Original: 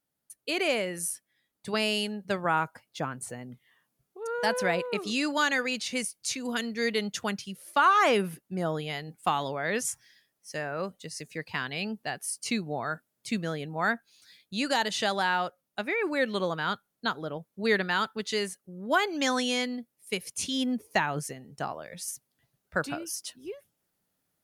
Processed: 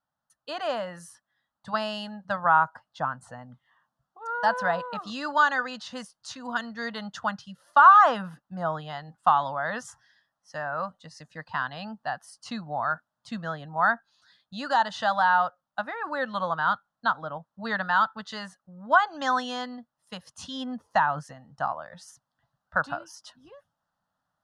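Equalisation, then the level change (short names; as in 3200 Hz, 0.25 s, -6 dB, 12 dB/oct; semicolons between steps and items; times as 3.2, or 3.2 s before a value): LPF 1400 Hz 12 dB/oct; tilt shelf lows -10 dB; fixed phaser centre 950 Hz, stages 4; +9.0 dB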